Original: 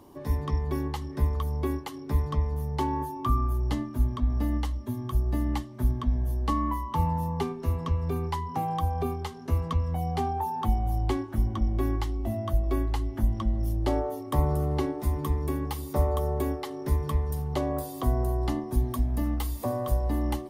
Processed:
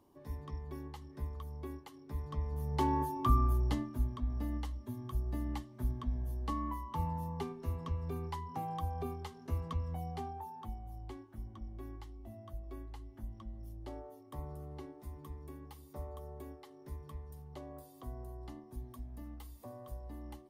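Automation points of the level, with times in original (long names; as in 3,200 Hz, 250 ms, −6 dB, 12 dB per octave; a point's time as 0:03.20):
0:02.13 −15 dB
0:02.87 −2.5 dB
0:03.51 −2.5 dB
0:04.14 −10 dB
0:09.93 −10 dB
0:10.83 −19.5 dB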